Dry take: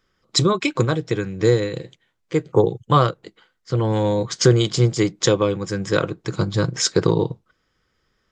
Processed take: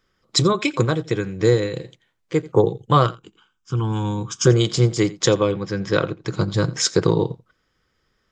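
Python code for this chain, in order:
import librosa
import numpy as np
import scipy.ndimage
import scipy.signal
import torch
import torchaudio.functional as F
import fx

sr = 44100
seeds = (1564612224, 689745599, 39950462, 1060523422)

p1 = fx.fixed_phaser(x, sr, hz=2900.0, stages=8, at=(3.06, 4.47))
p2 = fx.lowpass(p1, sr, hz=fx.line((5.51, 4700.0), (6.5, 8000.0)), slope=24, at=(5.51, 6.5), fade=0.02)
y = p2 + fx.echo_single(p2, sr, ms=86, db=-20.5, dry=0)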